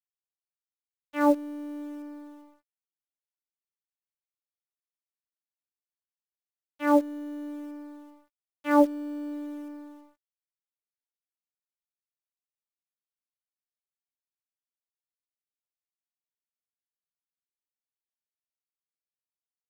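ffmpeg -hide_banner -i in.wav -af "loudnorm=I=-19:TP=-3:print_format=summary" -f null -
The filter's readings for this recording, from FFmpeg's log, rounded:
Input Integrated:    -27.8 LUFS
Input True Peak:      -8.3 dBTP
Input LRA:            13.4 LU
Input Threshold:     -40.0 LUFS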